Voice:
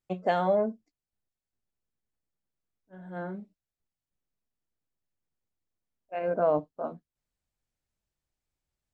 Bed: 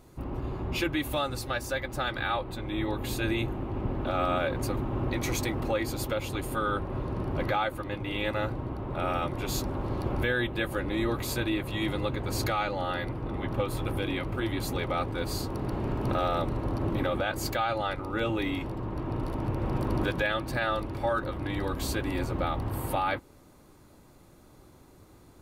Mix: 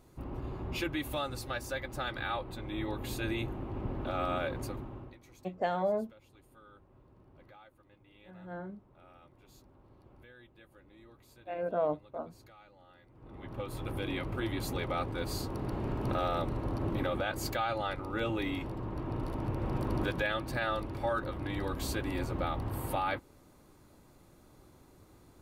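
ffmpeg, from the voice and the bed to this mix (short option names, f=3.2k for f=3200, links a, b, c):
-filter_complex "[0:a]adelay=5350,volume=-5.5dB[a];[1:a]volume=19dB,afade=t=out:st=4.46:d=0.72:silence=0.0707946,afade=t=in:st=13.1:d=1.08:silence=0.0595662[b];[a][b]amix=inputs=2:normalize=0"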